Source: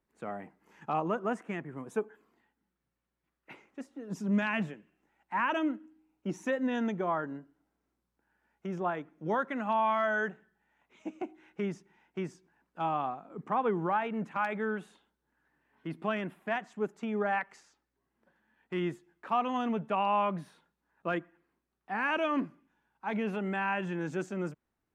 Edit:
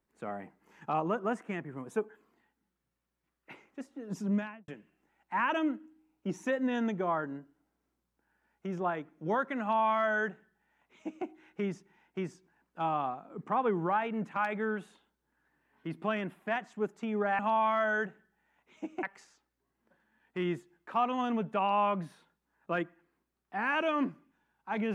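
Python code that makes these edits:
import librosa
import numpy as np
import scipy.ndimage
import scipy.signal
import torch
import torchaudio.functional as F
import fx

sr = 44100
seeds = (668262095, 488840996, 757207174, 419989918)

y = fx.studio_fade_out(x, sr, start_s=4.21, length_s=0.47)
y = fx.edit(y, sr, fx.duplicate(start_s=9.62, length_s=1.64, to_s=17.39), tone=tone)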